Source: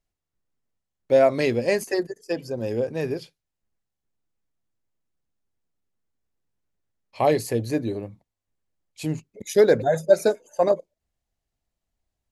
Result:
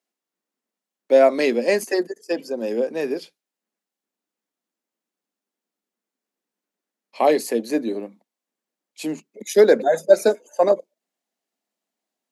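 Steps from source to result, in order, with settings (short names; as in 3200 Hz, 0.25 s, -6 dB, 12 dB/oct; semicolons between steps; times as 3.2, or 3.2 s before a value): steep high-pass 200 Hz 48 dB/oct; gain +3 dB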